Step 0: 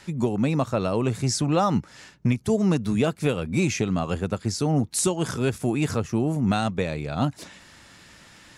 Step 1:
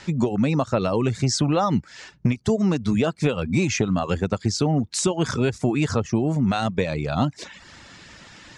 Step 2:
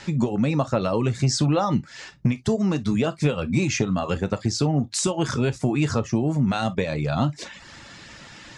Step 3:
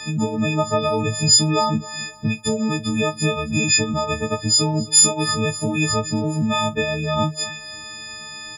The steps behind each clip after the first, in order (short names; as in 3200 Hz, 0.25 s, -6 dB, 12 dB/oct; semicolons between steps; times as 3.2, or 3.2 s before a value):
compressor, threshold -22 dBFS, peak gain reduction 6 dB; LPF 7300 Hz 24 dB/oct; reverb removal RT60 0.53 s; gain +6 dB
in parallel at -2.5 dB: compressor, threshold -27 dBFS, peak gain reduction 11.5 dB; on the sum: non-linear reverb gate 80 ms falling, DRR 9.5 dB; gain -3.5 dB
frequency quantiser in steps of 6 st; feedback echo 0.265 s, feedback 39%, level -19.5 dB